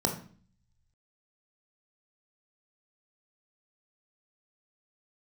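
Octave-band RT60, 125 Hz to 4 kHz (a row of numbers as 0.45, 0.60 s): 1.3, 0.75, 0.45, 0.45, 0.40, 0.45 s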